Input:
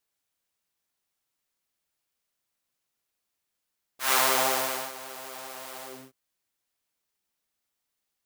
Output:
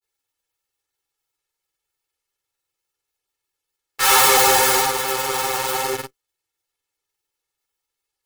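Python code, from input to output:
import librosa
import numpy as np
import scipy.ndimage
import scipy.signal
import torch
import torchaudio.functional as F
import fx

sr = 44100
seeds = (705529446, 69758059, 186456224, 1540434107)

p1 = fx.granulator(x, sr, seeds[0], grain_ms=100.0, per_s=20.0, spray_ms=10.0, spread_st=0)
p2 = fx.fuzz(p1, sr, gain_db=41.0, gate_db=-47.0)
p3 = p1 + (p2 * librosa.db_to_amplitude(-5.5))
y = p3 + 1.0 * np.pad(p3, (int(2.3 * sr / 1000.0), 0))[:len(p3)]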